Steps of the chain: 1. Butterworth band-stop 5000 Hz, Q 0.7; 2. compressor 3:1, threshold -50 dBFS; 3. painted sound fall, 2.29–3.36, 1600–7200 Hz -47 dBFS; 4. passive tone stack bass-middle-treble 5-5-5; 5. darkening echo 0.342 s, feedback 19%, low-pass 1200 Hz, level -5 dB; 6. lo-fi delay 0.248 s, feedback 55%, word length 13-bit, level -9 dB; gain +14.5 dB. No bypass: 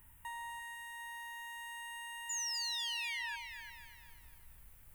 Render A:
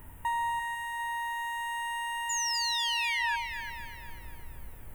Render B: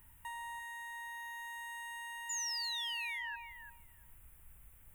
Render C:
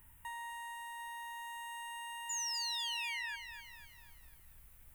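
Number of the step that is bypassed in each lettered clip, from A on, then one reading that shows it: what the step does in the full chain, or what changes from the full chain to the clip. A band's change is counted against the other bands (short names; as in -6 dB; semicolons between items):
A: 4, 1 kHz band +8.0 dB; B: 6, 1 kHz band +2.0 dB; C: 5, 1 kHz band +3.0 dB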